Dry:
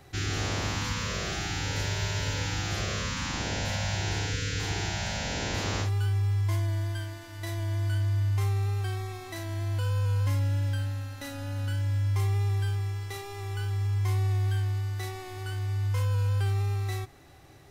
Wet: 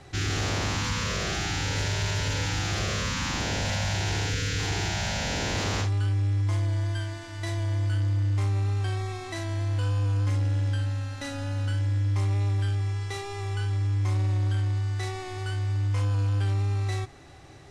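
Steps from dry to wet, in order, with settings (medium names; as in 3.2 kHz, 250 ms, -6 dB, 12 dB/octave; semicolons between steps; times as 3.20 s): low-pass 9.1 kHz 24 dB/octave; saturation -25.5 dBFS, distortion -17 dB; trim +4.5 dB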